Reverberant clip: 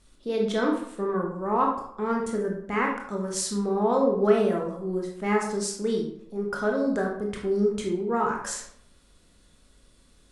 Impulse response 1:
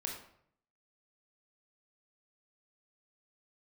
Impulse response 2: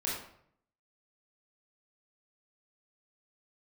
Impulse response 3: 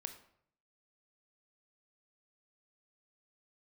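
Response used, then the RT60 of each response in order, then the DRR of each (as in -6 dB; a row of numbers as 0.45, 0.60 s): 1; 0.65, 0.65, 0.65 s; 0.0, -6.0, 7.0 dB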